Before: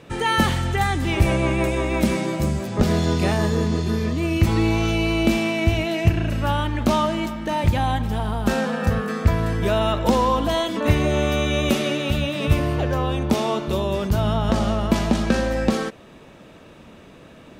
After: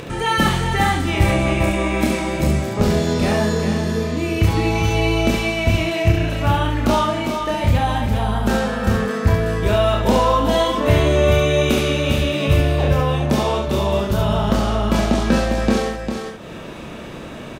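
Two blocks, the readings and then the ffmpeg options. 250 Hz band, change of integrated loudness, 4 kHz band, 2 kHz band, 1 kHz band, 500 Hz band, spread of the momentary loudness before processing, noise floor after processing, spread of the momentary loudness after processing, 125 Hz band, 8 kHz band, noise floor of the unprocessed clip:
+2.0 dB, +3.0 dB, +3.5 dB, +3.5 dB, +3.5 dB, +4.0 dB, 4 LU, -33 dBFS, 5 LU, +3.0 dB, +3.5 dB, -46 dBFS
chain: -filter_complex "[0:a]asplit=2[a][b];[b]aecho=0:1:401:0.473[c];[a][c]amix=inputs=2:normalize=0,acompressor=mode=upward:threshold=-25dB:ratio=2.5,asplit=2[d][e];[e]aecho=0:1:29|70:0.668|0.596[f];[d][f]amix=inputs=2:normalize=0"

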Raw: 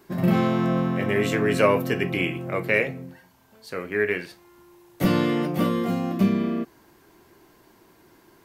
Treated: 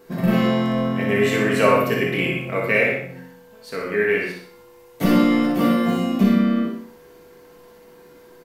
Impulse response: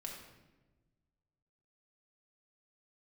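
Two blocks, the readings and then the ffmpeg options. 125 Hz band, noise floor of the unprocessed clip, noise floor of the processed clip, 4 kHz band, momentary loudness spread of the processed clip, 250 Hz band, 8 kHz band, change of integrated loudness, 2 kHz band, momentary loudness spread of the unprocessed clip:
+1.0 dB, -57 dBFS, -48 dBFS, +4.5 dB, 11 LU, +5.0 dB, n/a, +4.0 dB, +4.5 dB, 10 LU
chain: -filter_complex "[0:a]aeval=exprs='val(0)+0.00282*sin(2*PI*490*n/s)':c=same,aecho=1:1:61|122|183|244|305:0.562|0.219|0.0855|0.0334|0.013[a];[1:a]atrim=start_sample=2205,atrim=end_sample=6615[b];[a][b]afir=irnorm=-1:irlink=0,volume=6dB"

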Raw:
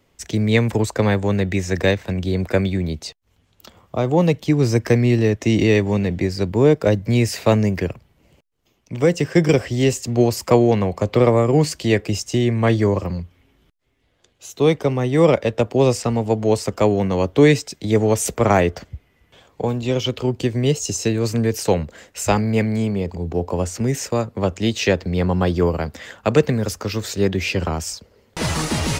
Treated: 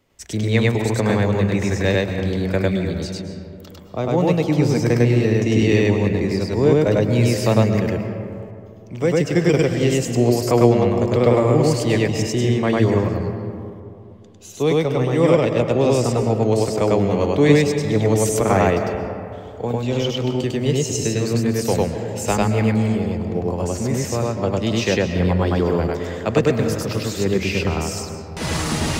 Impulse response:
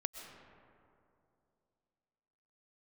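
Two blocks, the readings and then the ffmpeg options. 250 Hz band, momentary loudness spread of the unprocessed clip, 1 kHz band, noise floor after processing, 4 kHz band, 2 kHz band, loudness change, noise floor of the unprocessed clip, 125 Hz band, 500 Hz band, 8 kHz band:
+0.5 dB, 9 LU, 0.0 dB, -39 dBFS, 0.0 dB, 0.0 dB, 0.0 dB, -62 dBFS, +0.5 dB, +0.5 dB, -0.5 dB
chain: -filter_complex "[0:a]asplit=2[a][b];[1:a]atrim=start_sample=2205,adelay=101[c];[b][c]afir=irnorm=-1:irlink=0,volume=1.5dB[d];[a][d]amix=inputs=2:normalize=0,volume=-3.5dB"

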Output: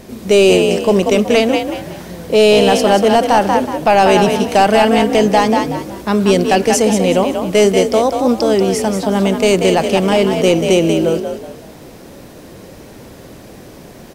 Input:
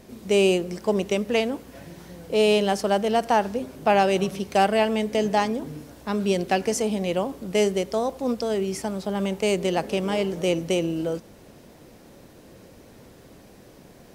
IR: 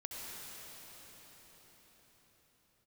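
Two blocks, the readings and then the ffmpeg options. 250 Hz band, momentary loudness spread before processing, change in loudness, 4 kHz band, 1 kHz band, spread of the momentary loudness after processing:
+11.5 dB, 10 LU, +11.0 dB, +11.0 dB, +11.0 dB, 7 LU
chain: -filter_complex "[0:a]asplit=5[a][b][c][d][e];[b]adelay=186,afreqshift=48,volume=-7dB[f];[c]adelay=372,afreqshift=96,volume=-16.9dB[g];[d]adelay=558,afreqshift=144,volume=-26.8dB[h];[e]adelay=744,afreqshift=192,volume=-36.7dB[i];[a][f][g][h][i]amix=inputs=5:normalize=0,apsyclip=15dB,volume=-3.5dB"

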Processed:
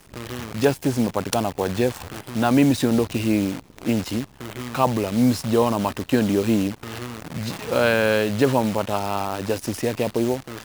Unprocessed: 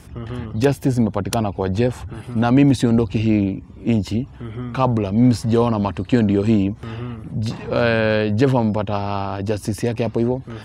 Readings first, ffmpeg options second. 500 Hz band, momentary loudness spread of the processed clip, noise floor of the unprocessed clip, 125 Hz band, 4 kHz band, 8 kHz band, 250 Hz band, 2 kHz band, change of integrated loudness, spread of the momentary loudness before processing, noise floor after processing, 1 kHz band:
-1.0 dB, 12 LU, -40 dBFS, -7.0 dB, +1.5 dB, +4.0 dB, -3.5 dB, +0.5 dB, -3.0 dB, 11 LU, -49 dBFS, -0.5 dB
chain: -af "acrusher=bits=6:dc=4:mix=0:aa=0.000001,lowshelf=f=160:g=-11.5"

